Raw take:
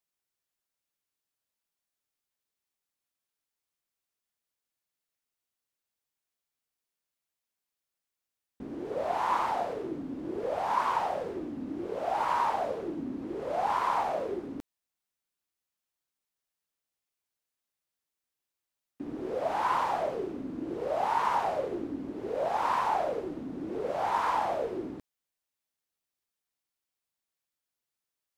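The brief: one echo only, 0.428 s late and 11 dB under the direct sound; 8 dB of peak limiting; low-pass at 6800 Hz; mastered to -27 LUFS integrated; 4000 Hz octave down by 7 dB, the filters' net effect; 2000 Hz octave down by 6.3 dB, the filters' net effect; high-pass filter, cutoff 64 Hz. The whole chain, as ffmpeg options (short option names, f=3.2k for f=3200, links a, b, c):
-af "highpass=64,lowpass=6.8k,equalizer=f=2k:t=o:g=-7.5,equalizer=f=4k:t=o:g=-6,alimiter=level_in=1dB:limit=-24dB:level=0:latency=1,volume=-1dB,aecho=1:1:428:0.282,volume=7.5dB"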